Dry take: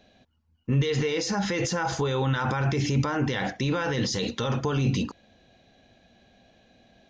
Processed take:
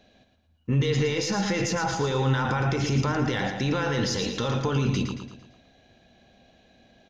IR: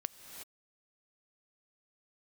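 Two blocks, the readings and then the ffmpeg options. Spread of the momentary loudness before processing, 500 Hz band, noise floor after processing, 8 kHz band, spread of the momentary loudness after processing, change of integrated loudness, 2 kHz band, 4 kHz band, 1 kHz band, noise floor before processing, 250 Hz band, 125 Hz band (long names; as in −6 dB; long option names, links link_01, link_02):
3 LU, +1.0 dB, −63 dBFS, +1.0 dB, 4 LU, +1.0 dB, +1.0 dB, +1.0 dB, +1.0 dB, −66 dBFS, +1.0 dB, +1.0 dB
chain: -af "aeval=exprs='0.2*(cos(1*acos(clip(val(0)/0.2,-1,1)))-cos(1*PI/2))+0.002*(cos(8*acos(clip(val(0)/0.2,-1,1)))-cos(8*PI/2))':channel_layout=same,aecho=1:1:113|226|339|452|565:0.447|0.205|0.0945|0.0435|0.02"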